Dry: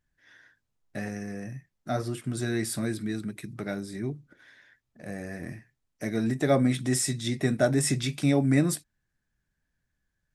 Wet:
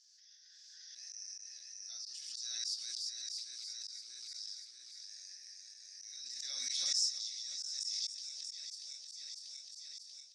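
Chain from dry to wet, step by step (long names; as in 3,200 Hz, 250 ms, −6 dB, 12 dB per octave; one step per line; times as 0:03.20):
feedback delay that plays each chunk backwards 319 ms, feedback 66%, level −3 dB
reversed playback
downward compressor 5 to 1, threshold −32 dBFS, peak gain reduction 14 dB
reversed playback
flat-topped band-pass 5,300 Hz, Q 3.4
on a send at −7 dB: convolution reverb RT60 0.70 s, pre-delay 3 ms
on the sum: volume swells 100 ms
background raised ahead of every attack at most 20 dB per second
level +11 dB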